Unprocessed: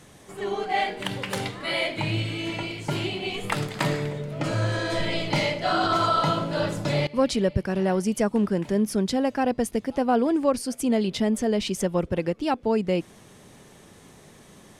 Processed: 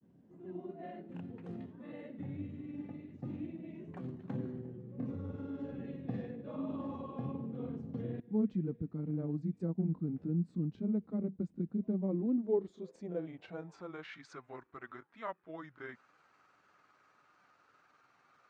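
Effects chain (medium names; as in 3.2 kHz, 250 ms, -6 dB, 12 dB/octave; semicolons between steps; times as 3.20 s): gliding tape speed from 91% -> 69%; granulator 100 ms, spray 18 ms, pitch spread up and down by 0 st; band-pass sweep 220 Hz -> 1.3 kHz, 11.98–14.18 s; trim -5 dB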